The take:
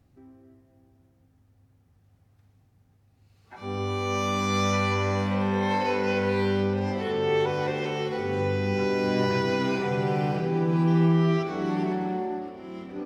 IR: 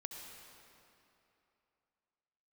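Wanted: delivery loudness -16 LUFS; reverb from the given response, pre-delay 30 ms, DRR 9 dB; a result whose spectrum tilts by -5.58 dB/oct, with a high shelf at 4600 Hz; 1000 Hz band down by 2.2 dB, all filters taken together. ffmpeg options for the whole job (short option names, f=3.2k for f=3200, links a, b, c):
-filter_complex "[0:a]equalizer=f=1k:t=o:g=-3,highshelf=f=4.6k:g=6,asplit=2[a][b];[1:a]atrim=start_sample=2205,adelay=30[c];[b][c]afir=irnorm=-1:irlink=0,volume=-6.5dB[d];[a][d]amix=inputs=2:normalize=0,volume=9dB"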